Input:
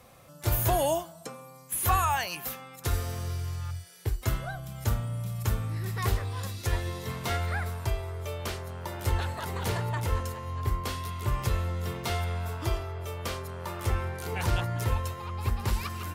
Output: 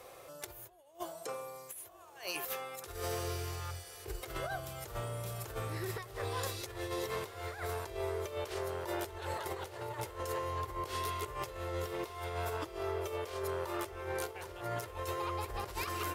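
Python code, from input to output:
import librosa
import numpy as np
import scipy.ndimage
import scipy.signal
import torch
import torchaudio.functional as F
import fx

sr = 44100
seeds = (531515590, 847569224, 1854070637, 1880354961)

y = fx.low_shelf_res(x, sr, hz=290.0, db=-9.0, q=3.0)
y = fx.over_compress(y, sr, threshold_db=-37.0, ratio=-0.5)
y = fx.echo_diffused(y, sr, ms=1019, feedback_pct=49, wet_db=-15)
y = y * librosa.db_to_amplitude(-2.5)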